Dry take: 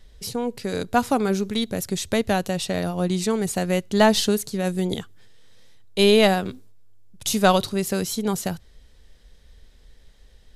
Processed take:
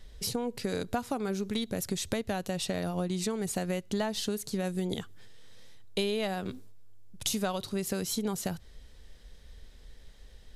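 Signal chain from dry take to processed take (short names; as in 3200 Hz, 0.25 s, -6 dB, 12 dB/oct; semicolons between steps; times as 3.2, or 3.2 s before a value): compressor 10:1, threshold -28 dBFS, peak gain reduction 17 dB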